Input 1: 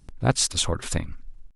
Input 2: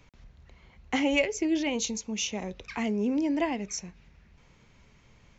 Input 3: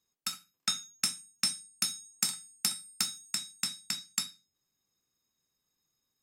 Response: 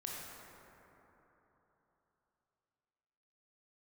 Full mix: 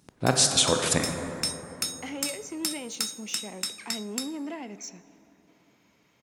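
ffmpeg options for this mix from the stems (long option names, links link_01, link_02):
-filter_complex "[0:a]dynaudnorm=framelen=170:gausssize=3:maxgain=14dB,volume=-1.5dB,asplit=2[link_01][link_02];[link_02]volume=-5.5dB[link_03];[1:a]alimiter=limit=-21.5dB:level=0:latency=1:release=194,asoftclip=type=tanh:threshold=-26dB,adelay=1100,volume=-4.5dB,asplit=2[link_04][link_05];[link_05]volume=-13dB[link_06];[2:a]volume=2.5dB,asplit=2[link_07][link_08];[link_08]volume=-16dB[link_09];[link_01][link_07]amix=inputs=2:normalize=0,alimiter=limit=-13.5dB:level=0:latency=1:release=420,volume=0dB[link_10];[3:a]atrim=start_sample=2205[link_11];[link_03][link_06][link_09]amix=inputs=3:normalize=0[link_12];[link_12][link_11]afir=irnorm=-1:irlink=0[link_13];[link_04][link_10][link_13]amix=inputs=3:normalize=0,highpass=190"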